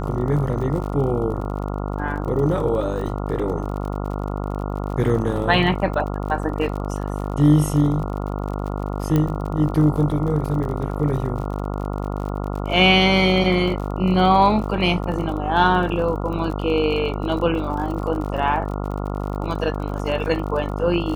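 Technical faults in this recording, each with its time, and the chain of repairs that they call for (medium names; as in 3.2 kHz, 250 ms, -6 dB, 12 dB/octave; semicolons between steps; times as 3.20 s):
buzz 50 Hz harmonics 28 -26 dBFS
crackle 43 per s -30 dBFS
9.16 s: pop -9 dBFS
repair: de-click; de-hum 50 Hz, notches 28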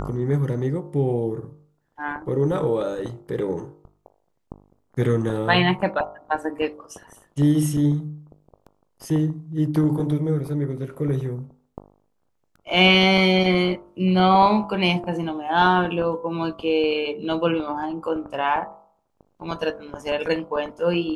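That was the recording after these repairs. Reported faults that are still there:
nothing left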